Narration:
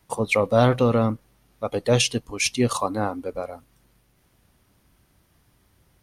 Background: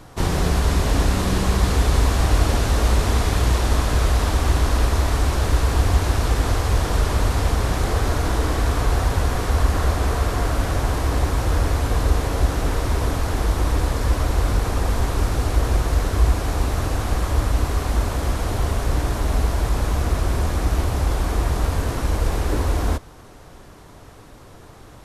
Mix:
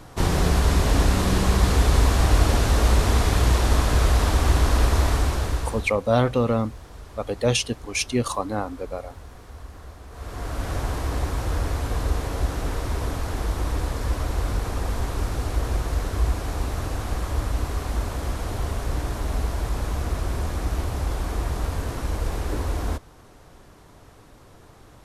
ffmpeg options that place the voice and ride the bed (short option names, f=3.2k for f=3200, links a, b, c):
-filter_complex "[0:a]adelay=5550,volume=-2dB[a];[1:a]volume=16dB,afade=t=out:st=5.06:d=0.87:silence=0.0841395,afade=t=in:st=10.1:d=0.65:silence=0.149624[b];[a][b]amix=inputs=2:normalize=0"